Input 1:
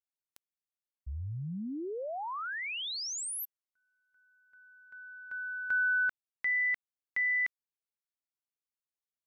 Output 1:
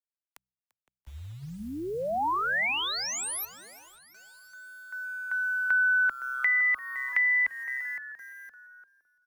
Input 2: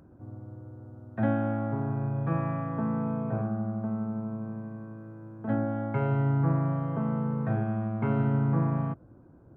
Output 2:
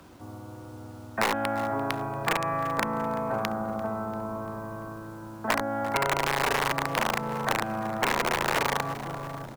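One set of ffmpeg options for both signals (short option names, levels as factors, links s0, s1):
-filter_complex "[0:a]asplit=2[s0][s1];[s1]adelay=513,lowpass=f=820:p=1,volume=0.299,asplit=2[s2][s3];[s3]adelay=513,lowpass=f=820:p=1,volume=0.39,asplit=2[s4][s5];[s5]adelay=513,lowpass=f=820:p=1,volume=0.39,asplit=2[s6][s7];[s7]adelay=513,lowpass=f=820:p=1,volume=0.39[s8];[s2][s4][s6][s8]amix=inputs=4:normalize=0[s9];[s0][s9]amix=inputs=2:normalize=0,aeval=exprs='(mod(9.44*val(0)+1,2)-1)/9.44':c=same,equalizer=f=125:t=o:w=1:g=-6,equalizer=f=1000:t=o:w=1:g=10,equalizer=f=2000:t=o:w=1:g=7,acrusher=bits=9:mix=0:aa=0.000001,asplit=2[s10][s11];[s11]asplit=4[s12][s13][s14][s15];[s12]adelay=343,afreqshift=-130,volume=0.0944[s16];[s13]adelay=686,afreqshift=-260,volume=0.0537[s17];[s14]adelay=1029,afreqshift=-390,volume=0.0305[s18];[s15]adelay=1372,afreqshift=-520,volume=0.0176[s19];[s16][s17][s18][s19]amix=inputs=4:normalize=0[s20];[s10][s20]amix=inputs=2:normalize=0,acrossover=split=110|300|800|1700[s21][s22][s23][s24][s25];[s21]acompressor=threshold=0.00355:ratio=4[s26];[s22]acompressor=threshold=0.00562:ratio=4[s27];[s23]acompressor=threshold=0.0251:ratio=4[s28];[s24]acompressor=threshold=0.0112:ratio=4[s29];[s25]acompressor=threshold=0.0282:ratio=4[s30];[s26][s27][s28][s29][s30]amix=inputs=5:normalize=0,bandreject=f=63.35:t=h:w=4,bandreject=f=126.7:t=h:w=4,bandreject=f=190.05:t=h:w=4,volume=1.5"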